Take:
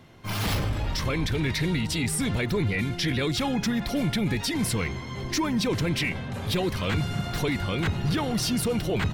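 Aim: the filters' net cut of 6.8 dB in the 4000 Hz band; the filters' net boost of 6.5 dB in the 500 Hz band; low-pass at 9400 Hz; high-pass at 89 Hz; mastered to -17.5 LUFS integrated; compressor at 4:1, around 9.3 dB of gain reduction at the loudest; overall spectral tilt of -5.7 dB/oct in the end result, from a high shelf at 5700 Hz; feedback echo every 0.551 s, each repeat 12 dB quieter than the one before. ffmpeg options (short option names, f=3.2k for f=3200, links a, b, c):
-af "highpass=89,lowpass=9.4k,equalizer=f=500:t=o:g=8,equalizer=f=4k:t=o:g=-6.5,highshelf=f=5.7k:g=-6,acompressor=threshold=-28dB:ratio=4,aecho=1:1:551|1102|1653:0.251|0.0628|0.0157,volume=13.5dB"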